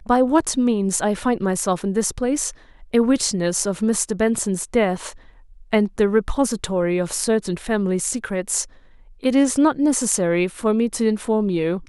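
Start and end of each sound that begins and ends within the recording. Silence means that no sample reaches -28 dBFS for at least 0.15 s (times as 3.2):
2.94–5.1
5.73–8.64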